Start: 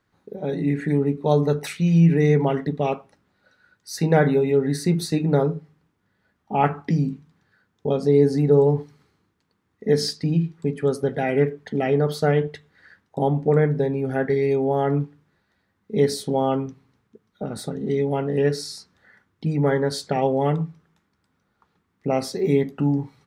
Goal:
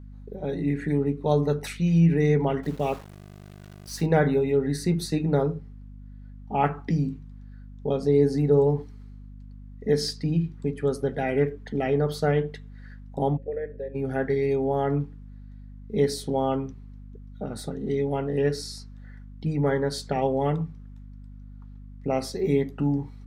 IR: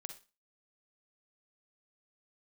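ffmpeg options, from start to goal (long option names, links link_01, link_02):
-filter_complex "[0:a]asplit=3[link_01][link_02][link_03];[link_01]afade=type=out:start_time=13.36:duration=0.02[link_04];[link_02]asplit=3[link_05][link_06][link_07];[link_05]bandpass=frequency=530:width_type=q:width=8,volume=0dB[link_08];[link_06]bandpass=frequency=1840:width_type=q:width=8,volume=-6dB[link_09];[link_07]bandpass=frequency=2480:width_type=q:width=8,volume=-9dB[link_10];[link_08][link_09][link_10]amix=inputs=3:normalize=0,afade=type=in:start_time=13.36:duration=0.02,afade=type=out:start_time=13.94:duration=0.02[link_11];[link_03]afade=type=in:start_time=13.94:duration=0.02[link_12];[link_04][link_11][link_12]amix=inputs=3:normalize=0,aeval=exprs='val(0)+0.0126*(sin(2*PI*50*n/s)+sin(2*PI*2*50*n/s)/2+sin(2*PI*3*50*n/s)/3+sin(2*PI*4*50*n/s)/4+sin(2*PI*5*50*n/s)/5)':channel_layout=same,asettb=1/sr,asplit=3[link_13][link_14][link_15];[link_13]atrim=end=2.634[link_16];[link_14]atrim=start=2.63:end=4.06,asetpts=PTS-STARTPTS,afade=type=in:duration=0.004:curve=qsin,afade=type=out:start_time=1.426:duration=0.004:curve=qsin,aeval=exprs='val(0)*gte(abs(val(0)),0.0133)':channel_layout=same[link_17];[link_15]atrim=start=4.056[link_18];[link_16][link_17]acrossfade=duration=0.004:curve1=hsin:curve2=qsin[link_19];[link_19][link_18]acrossfade=duration=0.004:curve1=qsin:curve2=hsin,volume=-3.5dB"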